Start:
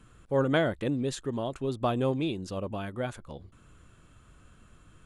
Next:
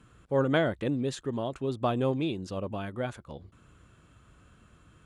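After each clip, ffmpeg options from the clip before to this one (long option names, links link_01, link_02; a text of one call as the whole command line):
ffmpeg -i in.wav -af "highpass=47,highshelf=frequency=9000:gain=-8" out.wav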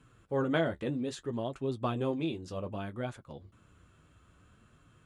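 ffmpeg -i in.wav -af "flanger=delay=7:depth=6.3:regen=-35:speed=0.62:shape=triangular" out.wav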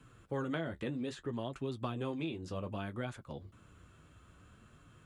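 ffmpeg -i in.wav -filter_complex "[0:a]acrossover=split=360|990|2700[link_01][link_02][link_03][link_04];[link_01]acompressor=threshold=-40dB:ratio=4[link_05];[link_02]acompressor=threshold=-47dB:ratio=4[link_06];[link_03]acompressor=threshold=-46dB:ratio=4[link_07];[link_04]acompressor=threshold=-56dB:ratio=4[link_08];[link_05][link_06][link_07][link_08]amix=inputs=4:normalize=0,volume=2dB" out.wav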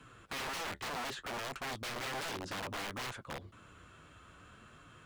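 ffmpeg -i in.wav -filter_complex "[0:a]aeval=exprs='(mod(75*val(0)+1,2)-1)/75':channel_layout=same,asplit=2[link_01][link_02];[link_02]highpass=frequency=720:poles=1,volume=8dB,asoftclip=type=tanh:threshold=-37.5dB[link_03];[link_01][link_03]amix=inputs=2:normalize=0,lowpass=frequency=4700:poles=1,volume=-6dB,volume=4dB" out.wav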